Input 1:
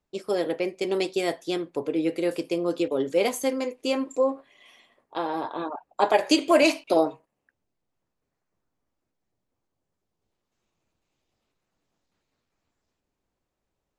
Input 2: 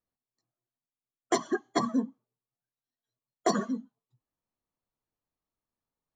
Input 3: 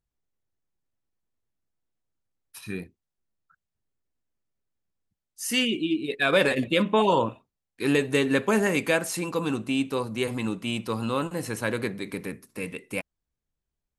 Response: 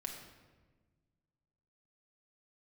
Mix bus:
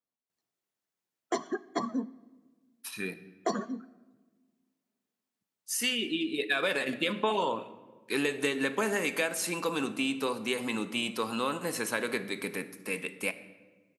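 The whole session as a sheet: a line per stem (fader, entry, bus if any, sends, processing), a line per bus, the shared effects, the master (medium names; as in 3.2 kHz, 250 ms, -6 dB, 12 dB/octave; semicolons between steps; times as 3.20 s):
mute
-5.0 dB, 0.00 s, send -12 dB, none
-2.0 dB, 0.30 s, send -4 dB, tilt EQ +2 dB/octave; compression, threshold -26 dBFS, peak gain reduction 10 dB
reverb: on, RT60 1.4 s, pre-delay 5 ms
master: high-pass 180 Hz 12 dB/octave; treble shelf 4.9 kHz -5.5 dB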